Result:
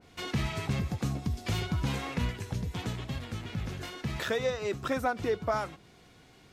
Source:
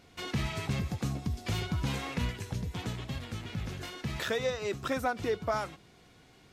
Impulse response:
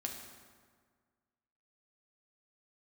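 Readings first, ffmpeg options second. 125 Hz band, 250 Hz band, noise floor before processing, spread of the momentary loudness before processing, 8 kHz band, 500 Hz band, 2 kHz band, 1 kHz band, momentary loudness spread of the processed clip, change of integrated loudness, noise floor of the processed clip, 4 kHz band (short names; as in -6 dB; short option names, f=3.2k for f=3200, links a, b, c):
+1.5 dB, +1.5 dB, -59 dBFS, 7 LU, -0.5 dB, +1.5 dB, +0.5 dB, +1.5 dB, 7 LU, +1.0 dB, -58 dBFS, 0.0 dB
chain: -af "adynamicequalizer=threshold=0.00398:dfrequency=2100:dqfactor=0.7:tfrequency=2100:tqfactor=0.7:attack=5:release=100:ratio=0.375:range=1.5:mode=cutabove:tftype=highshelf,volume=1.5dB"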